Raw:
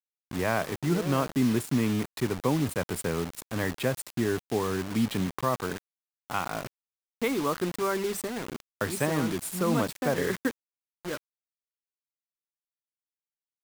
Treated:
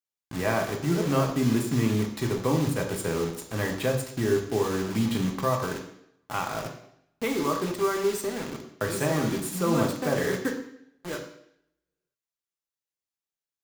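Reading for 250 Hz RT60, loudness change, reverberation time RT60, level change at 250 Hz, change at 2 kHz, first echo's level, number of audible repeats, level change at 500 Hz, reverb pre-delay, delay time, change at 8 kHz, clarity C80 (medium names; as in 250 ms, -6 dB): 0.75 s, +2.0 dB, 0.70 s, +1.0 dB, +0.5 dB, no echo, no echo, +3.0 dB, 3 ms, no echo, +1.5 dB, 10.0 dB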